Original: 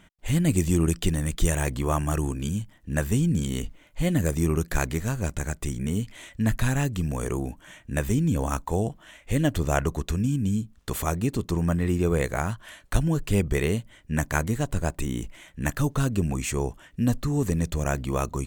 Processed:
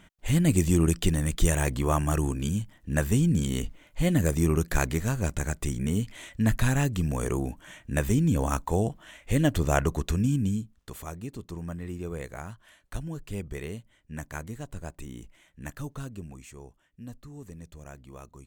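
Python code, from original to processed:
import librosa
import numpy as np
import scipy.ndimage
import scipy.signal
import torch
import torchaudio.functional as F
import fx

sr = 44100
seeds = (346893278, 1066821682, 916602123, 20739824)

y = fx.gain(x, sr, db=fx.line((10.4, 0.0), (10.94, -12.0), (15.92, -12.0), (16.53, -19.0)))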